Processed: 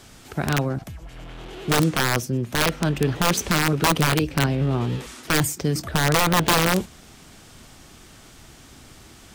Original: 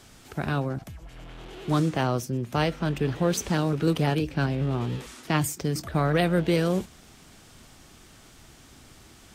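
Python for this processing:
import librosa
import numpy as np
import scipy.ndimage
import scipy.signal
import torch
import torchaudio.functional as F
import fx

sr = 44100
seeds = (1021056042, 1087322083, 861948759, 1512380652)

y = (np.mod(10.0 ** (16.0 / 20.0) * x + 1.0, 2.0) - 1.0) / 10.0 ** (16.0 / 20.0)
y = y * librosa.db_to_amplitude(4.5)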